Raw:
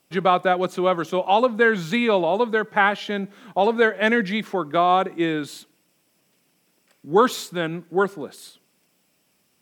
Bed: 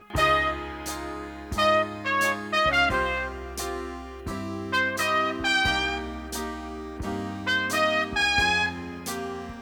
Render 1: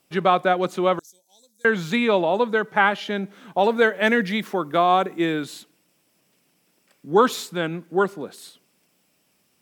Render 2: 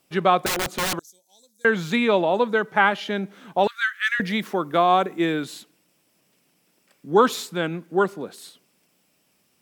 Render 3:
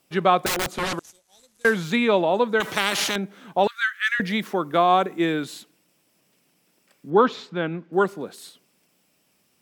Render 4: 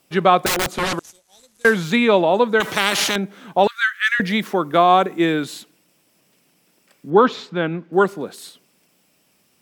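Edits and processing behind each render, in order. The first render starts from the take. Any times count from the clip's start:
0:00.99–0:01.65: inverse Chebyshev high-pass filter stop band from 3,000 Hz; 0:03.58–0:05.44: high-shelf EQ 11,000 Hz +11 dB
0:00.46–0:00.96: wrap-around overflow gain 19 dB; 0:03.67–0:04.20: Chebyshev high-pass with heavy ripple 1,200 Hz, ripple 3 dB
0:00.72–0:01.84: variable-slope delta modulation 64 kbit/s; 0:02.60–0:03.16: every bin compressed towards the loudest bin 4 to 1; 0:07.10–0:07.93: high-frequency loss of the air 210 metres
level +4.5 dB; brickwall limiter −2 dBFS, peak gain reduction 1.5 dB

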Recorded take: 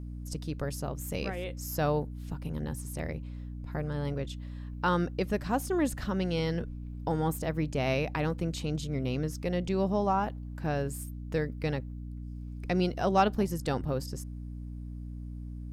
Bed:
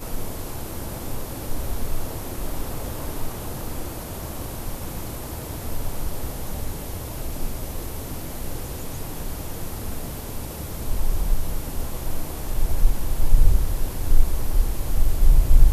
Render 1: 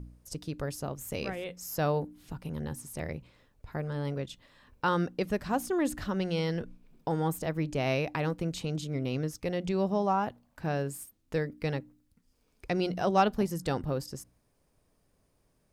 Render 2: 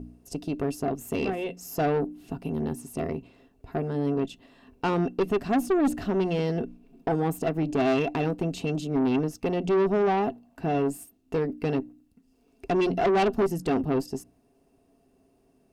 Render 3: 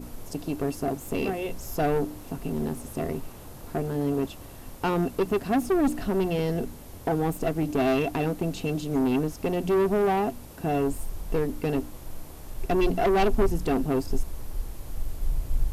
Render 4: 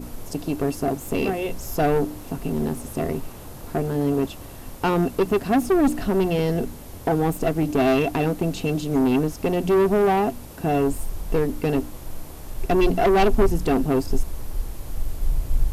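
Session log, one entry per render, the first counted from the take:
hum removal 60 Hz, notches 5
hollow resonant body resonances 270/390/680/2,700 Hz, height 17 dB, ringing for 55 ms; tube saturation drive 19 dB, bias 0.3
mix in bed −12 dB
level +4.5 dB

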